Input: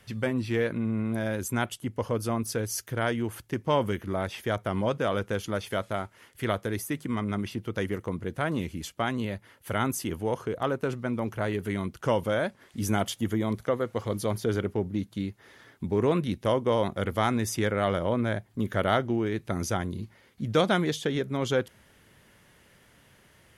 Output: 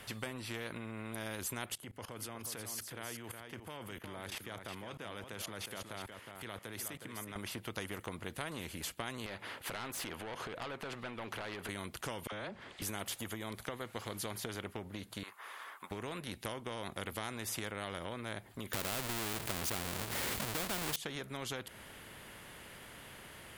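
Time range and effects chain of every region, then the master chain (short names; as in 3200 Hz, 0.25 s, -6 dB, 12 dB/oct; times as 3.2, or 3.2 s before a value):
1.75–7.36 HPF 84 Hz 24 dB/oct + level quantiser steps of 21 dB + echo 0.365 s -11 dB
9.26–11.69 high shelf 4400 Hz -10 dB + compressor 4:1, threshold -40 dBFS + overdrive pedal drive 20 dB, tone 3700 Hz, clips at -25 dBFS
12.27–12.82 dispersion lows, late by 50 ms, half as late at 880 Hz + compressor 3:1, threshold -33 dBFS + air absorption 97 m
15.23–15.91 resonant high-pass 1100 Hz, resonance Q 9.8 + bell 4400 Hz -7.5 dB 1.4 oct
18.73–20.96 half-waves squared off + fast leveller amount 70%
whole clip: bell 5800 Hz -6.5 dB 0.47 oct; compressor, threshold -30 dBFS; spectral compressor 2:1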